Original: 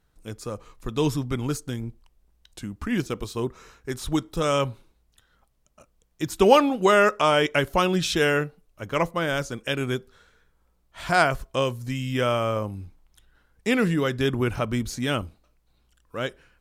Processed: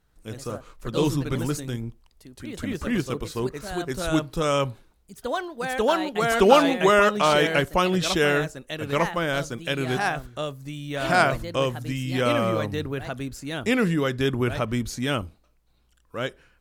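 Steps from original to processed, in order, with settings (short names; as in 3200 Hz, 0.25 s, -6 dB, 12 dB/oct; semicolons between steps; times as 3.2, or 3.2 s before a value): spectral gain 5.85–6.3, 240–3700 Hz -13 dB; echoes that change speed 82 ms, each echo +2 st, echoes 2, each echo -6 dB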